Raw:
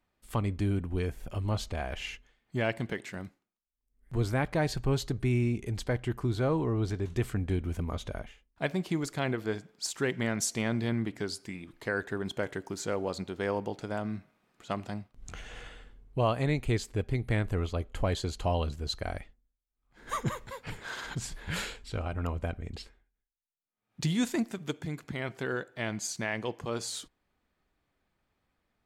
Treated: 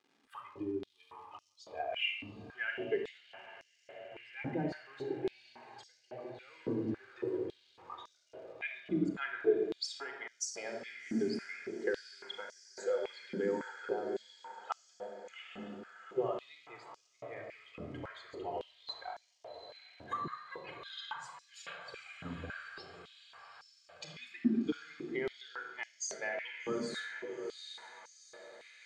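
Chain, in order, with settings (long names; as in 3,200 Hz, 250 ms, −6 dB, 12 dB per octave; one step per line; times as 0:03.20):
spectral dynamics exaggerated over time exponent 2
dynamic equaliser 3,500 Hz, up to −4 dB, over −56 dBFS, Q 0.81
downward compressor 6 to 1, threshold −47 dBFS, peak gain reduction 20 dB
surface crackle 210 per second −62 dBFS
high-frequency loss of the air 120 metres
feedback delay with all-pass diffusion 790 ms, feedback 62%, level −9.5 dB
rectangular room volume 3,600 cubic metres, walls furnished, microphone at 3.9 metres
high-pass on a step sequencer 3.6 Hz 240–5,700 Hz
level +8 dB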